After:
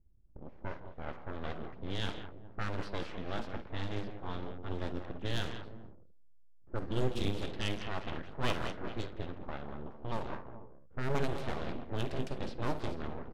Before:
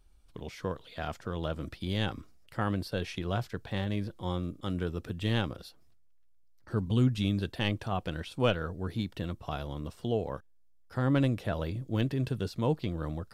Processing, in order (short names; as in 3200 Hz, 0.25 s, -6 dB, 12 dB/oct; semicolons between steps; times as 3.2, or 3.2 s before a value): tapped delay 52/72/165/198/418/491 ms -12.5/-15.5/-12.5/-9.5/-14/-19 dB; full-wave rectifier; low-pass opened by the level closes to 320 Hz, open at -24 dBFS; gain -3.5 dB